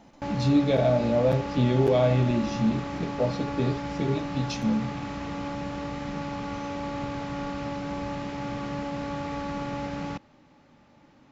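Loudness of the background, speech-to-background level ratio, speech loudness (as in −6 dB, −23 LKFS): −33.5 LKFS, 7.5 dB, −26.0 LKFS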